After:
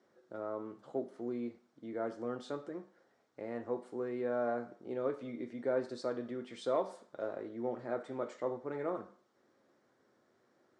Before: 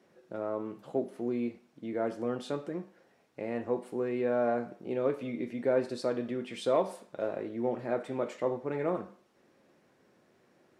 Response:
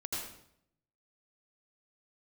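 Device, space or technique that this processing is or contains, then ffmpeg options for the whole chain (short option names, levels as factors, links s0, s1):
car door speaker: -af "highpass=85,equalizer=f=170:t=q:w=4:g=-9,equalizer=f=1300:t=q:w=4:g=4,equalizer=f=2600:t=q:w=4:g=-9,lowpass=f=8300:w=0.5412,lowpass=f=8300:w=1.3066,volume=0.531"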